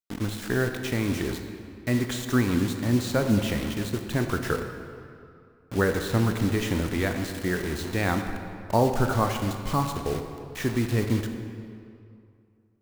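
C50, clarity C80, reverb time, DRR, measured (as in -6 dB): 6.5 dB, 7.5 dB, 2.5 s, 5.5 dB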